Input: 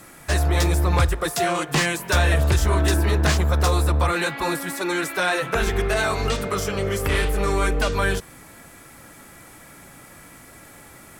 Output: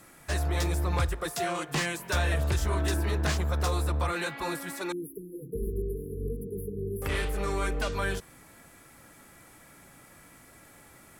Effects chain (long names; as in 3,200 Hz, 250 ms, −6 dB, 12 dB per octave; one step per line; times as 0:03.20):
0:04.92–0:07.02: linear-phase brick-wall band-stop 490–10,000 Hz
level −8.5 dB